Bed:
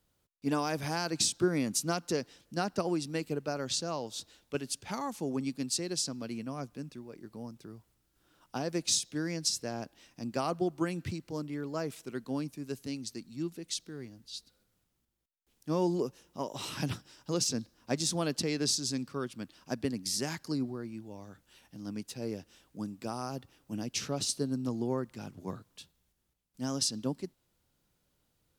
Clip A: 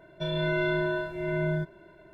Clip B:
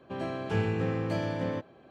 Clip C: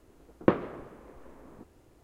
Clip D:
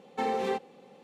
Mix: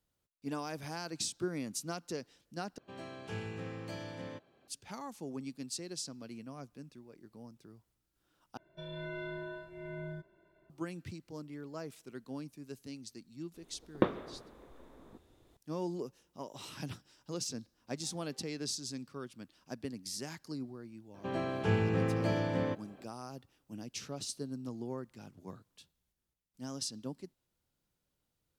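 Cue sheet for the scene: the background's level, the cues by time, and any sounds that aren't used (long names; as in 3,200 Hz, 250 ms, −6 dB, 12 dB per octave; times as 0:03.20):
bed −8 dB
0:02.78: overwrite with B −13 dB + high-shelf EQ 2,800 Hz +12 dB
0:08.57: overwrite with A −14.5 dB
0:13.54: mix in C −5.5 dB + parametric band 3,600 Hz +14 dB 0.23 octaves
0:17.85: mix in D −17 dB + output level in coarse steps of 23 dB
0:21.14: mix in B −1 dB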